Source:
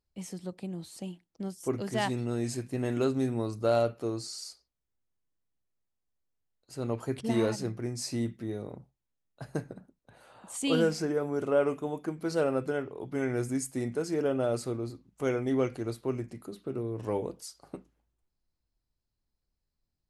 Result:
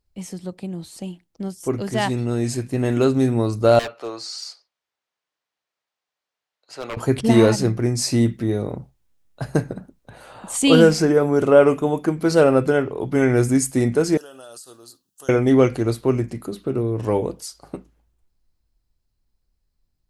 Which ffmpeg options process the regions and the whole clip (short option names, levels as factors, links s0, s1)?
-filter_complex "[0:a]asettb=1/sr,asplit=3[s0][s1][s2];[s0]atrim=end=3.794[s3];[s1]atrim=start=3.79:end=6.97,asetpts=PTS-STARTPTS,afade=t=in:d=0.004:c=qsin,afade=t=out:st=3.176:d=0.004:c=qsin,highpass=150,acrossover=split=540 5700:gain=0.1 1 0.158[s4][s5][s6];[s4][s5][s6]amix=inputs=3:normalize=0,aeval=exprs='0.0178*(abs(mod(val(0)/0.0178+3,4)-2)-1)':c=same[s7];[s2]atrim=start=6.966[s8];[s3][s7]acrossfade=d=0.004:c1=hsin:c2=qsin[s9];[s9][s8]acrossfade=d=0.004:c1=qsin:c2=hsin,asettb=1/sr,asplit=3[s10][s11][s12];[s10]atrim=end=14.174[s13];[s11]atrim=start=14.17:end=15.29,asetpts=PTS-STARTPTS,afade=t=in:d=0.004:c=qsin,afade=t=out:st=1.116:d=0.004:c=qsin,aderivative,acompressor=threshold=0.00355:ratio=12:attack=3.2:release=140:knee=1:detection=peak,asuperstop=centerf=2200:order=4:qfactor=2.5[s14];[s12]atrim=start=15.286[s15];[s13][s14]acrossfade=d=0.004:c1=hsin:c2=qsin[s16];[s16][s15]acrossfade=d=0.004:c1=qsin:c2=hsin,lowshelf=f=64:g=9,dynaudnorm=f=310:g=21:m=2.11,volume=2.11"